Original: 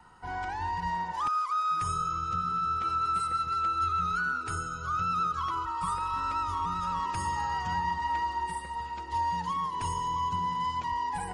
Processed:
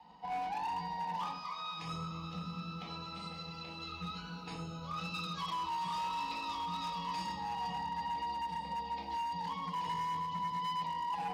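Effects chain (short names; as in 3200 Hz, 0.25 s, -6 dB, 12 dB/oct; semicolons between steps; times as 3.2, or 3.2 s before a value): Chebyshev low-pass 4500 Hz, order 3; fixed phaser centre 370 Hz, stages 6; limiter -31 dBFS, peak gain reduction 6 dB; 4.96–7.32 high shelf 2000 Hz +8 dB; tremolo 8.9 Hz, depth 32%; low shelf 200 Hz -8 dB; compressor 4:1, threshold -39 dBFS, peak gain reduction 4.5 dB; shoebox room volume 570 m³, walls furnished, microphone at 4 m; overloaded stage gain 33.5 dB; HPF 77 Hz; lo-fi delay 0.504 s, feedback 35%, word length 11-bit, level -15 dB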